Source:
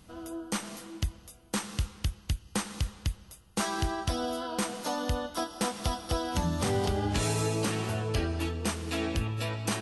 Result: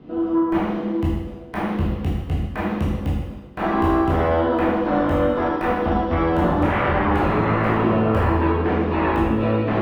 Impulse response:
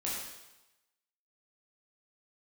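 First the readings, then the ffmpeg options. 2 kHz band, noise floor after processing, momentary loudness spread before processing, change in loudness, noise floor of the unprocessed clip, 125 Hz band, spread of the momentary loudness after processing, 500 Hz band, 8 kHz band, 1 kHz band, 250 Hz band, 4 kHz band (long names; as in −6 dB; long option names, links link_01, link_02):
+10.5 dB, −34 dBFS, 8 LU, +11.5 dB, −55 dBFS, +9.0 dB, 7 LU, +13.0 dB, below −15 dB, +13.0 dB, +14.0 dB, −3.0 dB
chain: -filter_complex "[0:a]acrossover=split=2900[link_01][link_02];[link_02]acompressor=threshold=-47dB:ratio=4:attack=1:release=60[link_03];[link_01][link_03]amix=inputs=2:normalize=0,acrossover=split=200|510|3300[link_04][link_05][link_06][link_07];[link_05]aeval=exprs='0.0531*sin(PI/2*5.01*val(0)/0.0531)':channel_layout=same[link_08];[link_07]acrusher=bits=5:mix=0:aa=0.000001[link_09];[link_04][link_08][link_06][link_09]amix=inputs=4:normalize=0[link_10];[1:a]atrim=start_sample=2205[link_11];[link_10][link_11]afir=irnorm=-1:irlink=0,volume=4dB"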